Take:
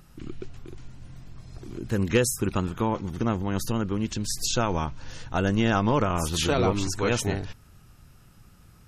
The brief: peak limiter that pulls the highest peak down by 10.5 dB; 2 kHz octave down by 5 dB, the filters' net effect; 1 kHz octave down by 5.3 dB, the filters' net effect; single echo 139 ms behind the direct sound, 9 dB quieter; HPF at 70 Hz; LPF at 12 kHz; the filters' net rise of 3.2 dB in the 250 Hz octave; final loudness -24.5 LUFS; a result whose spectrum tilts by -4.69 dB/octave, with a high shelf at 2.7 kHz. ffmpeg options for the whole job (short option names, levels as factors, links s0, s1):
-af "highpass=70,lowpass=12000,equalizer=f=250:t=o:g=4.5,equalizer=f=1000:t=o:g=-6,equalizer=f=2000:t=o:g=-8,highshelf=f=2700:g=6,alimiter=limit=0.133:level=0:latency=1,aecho=1:1:139:0.355,volume=1.41"